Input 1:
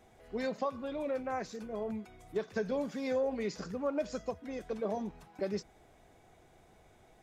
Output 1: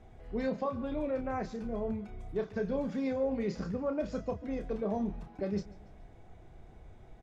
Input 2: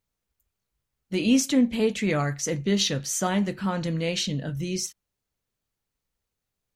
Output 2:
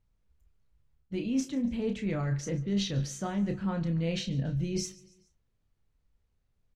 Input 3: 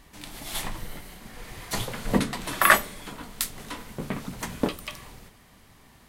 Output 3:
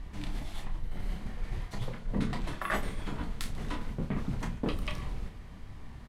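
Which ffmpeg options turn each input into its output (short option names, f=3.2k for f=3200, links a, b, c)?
-filter_complex "[0:a]aemphasis=mode=reproduction:type=bsi,areverse,acompressor=threshold=-28dB:ratio=16,areverse,asplit=2[a][b];[b]adelay=30,volume=-8dB[c];[a][c]amix=inputs=2:normalize=0,aecho=1:1:142|284|426:0.0891|0.0428|0.0205"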